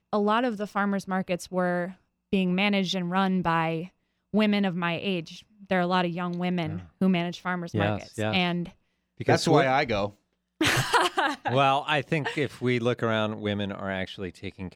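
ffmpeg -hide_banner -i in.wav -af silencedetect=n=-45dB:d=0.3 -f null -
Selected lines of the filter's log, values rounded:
silence_start: 1.93
silence_end: 2.32 | silence_duration: 0.39
silence_start: 3.88
silence_end: 4.34 | silence_duration: 0.46
silence_start: 8.71
silence_end: 9.20 | silence_duration: 0.49
silence_start: 10.12
silence_end: 10.61 | silence_duration: 0.49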